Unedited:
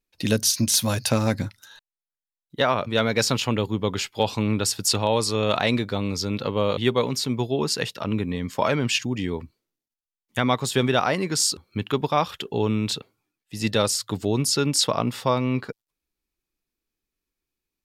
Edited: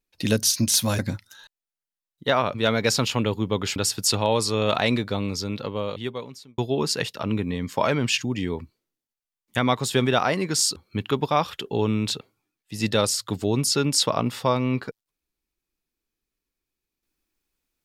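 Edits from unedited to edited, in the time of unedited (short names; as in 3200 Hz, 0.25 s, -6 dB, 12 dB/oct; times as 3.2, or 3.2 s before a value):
0.99–1.31 cut
4.08–4.57 cut
5.93–7.39 fade out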